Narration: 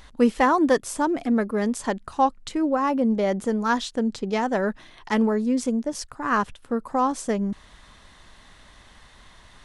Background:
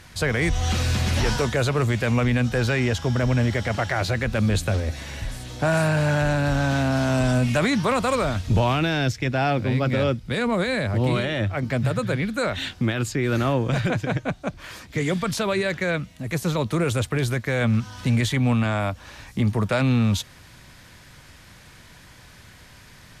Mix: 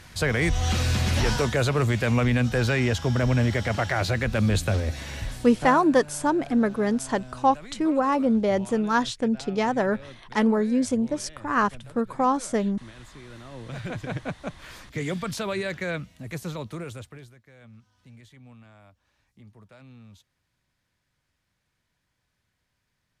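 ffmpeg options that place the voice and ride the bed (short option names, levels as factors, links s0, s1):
-filter_complex "[0:a]adelay=5250,volume=1[s0];[1:a]volume=6.31,afade=t=out:st=5.2:d=0.64:silence=0.0841395,afade=t=in:st=13.5:d=0.73:silence=0.141254,afade=t=out:st=15.99:d=1.34:silence=0.0668344[s1];[s0][s1]amix=inputs=2:normalize=0"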